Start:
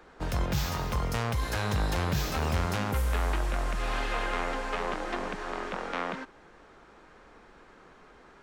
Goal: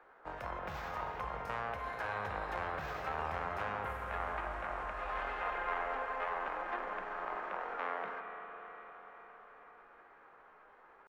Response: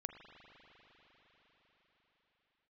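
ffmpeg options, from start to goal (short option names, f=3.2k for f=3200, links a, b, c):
-filter_complex "[0:a]atempo=0.76,acrossover=split=500 2200:gain=0.126 1 0.0794[a][b][c];[a][b][c]amix=inputs=3:normalize=0[d];[1:a]atrim=start_sample=2205[e];[d][e]afir=irnorm=-1:irlink=0,volume=1dB"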